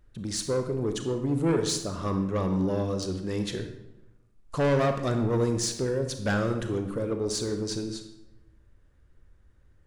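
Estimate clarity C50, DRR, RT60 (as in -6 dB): 7.5 dB, 6.5 dB, 0.95 s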